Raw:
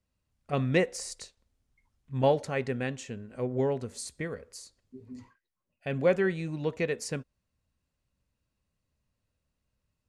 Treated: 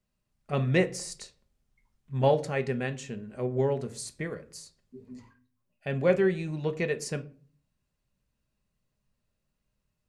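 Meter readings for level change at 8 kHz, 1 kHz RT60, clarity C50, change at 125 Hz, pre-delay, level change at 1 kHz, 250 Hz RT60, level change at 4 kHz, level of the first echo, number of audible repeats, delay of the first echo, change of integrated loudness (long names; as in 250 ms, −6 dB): +0.5 dB, 0.35 s, 18.5 dB, +2.5 dB, 5 ms, +1.0 dB, 0.55 s, +0.5 dB, no echo audible, no echo audible, no echo audible, +1.5 dB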